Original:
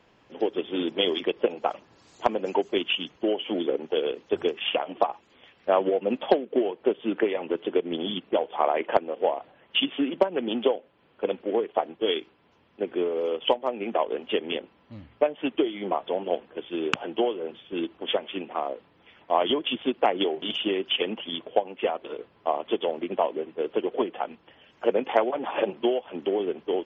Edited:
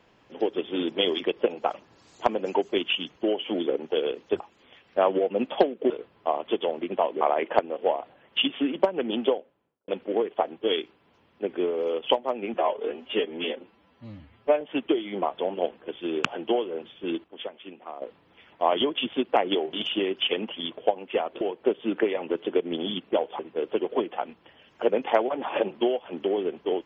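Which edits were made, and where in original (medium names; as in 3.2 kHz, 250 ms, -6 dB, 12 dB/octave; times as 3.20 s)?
4.40–5.11 s: delete
6.61–8.59 s: swap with 22.10–23.41 s
10.58–11.26 s: studio fade out
13.92–15.30 s: stretch 1.5×
17.93–18.71 s: gain -10 dB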